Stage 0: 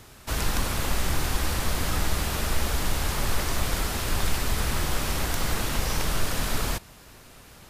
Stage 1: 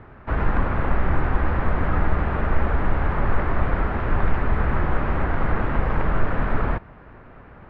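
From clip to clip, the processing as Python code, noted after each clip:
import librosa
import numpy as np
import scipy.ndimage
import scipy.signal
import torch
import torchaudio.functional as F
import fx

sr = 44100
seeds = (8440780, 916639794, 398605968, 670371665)

y = scipy.signal.sosfilt(scipy.signal.butter(4, 1800.0, 'lowpass', fs=sr, output='sos'), x)
y = y * librosa.db_to_amplitude(6.0)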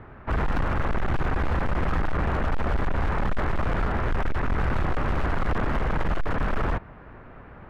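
y = np.clip(10.0 ** (20.0 / 20.0) * x, -1.0, 1.0) / 10.0 ** (20.0 / 20.0)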